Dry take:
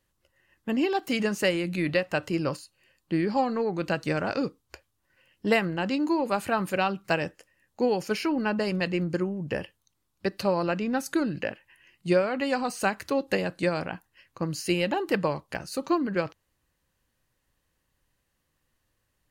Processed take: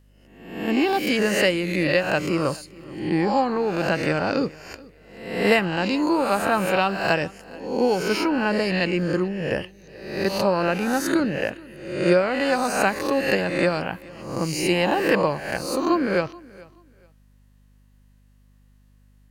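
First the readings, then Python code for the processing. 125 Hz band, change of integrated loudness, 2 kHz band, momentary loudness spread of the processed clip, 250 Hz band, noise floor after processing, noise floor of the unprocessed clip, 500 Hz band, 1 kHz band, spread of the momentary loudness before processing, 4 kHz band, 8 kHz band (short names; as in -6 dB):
+4.0 dB, +5.0 dB, +7.0 dB, 12 LU, +4.5 dB, -56 dBFS, -76 dBFS, +5.5 dB, +6.0 dB, 9 LU, +6.5 dB, +7.0 dB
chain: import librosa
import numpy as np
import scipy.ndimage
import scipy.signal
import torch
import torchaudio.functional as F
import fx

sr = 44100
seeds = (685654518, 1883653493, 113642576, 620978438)

y = fx.spec_swells(x, sr, rise_s=0.76)
y = fx.echo_feedback(y, sr, ms=429, feedback_pct=24, wet_db=-22.5)
y = fx.add_hum(y, sr, base_hz=50, snr_db=32)
y = F.gain(torch.from_numpy(y), 3.0).numpy()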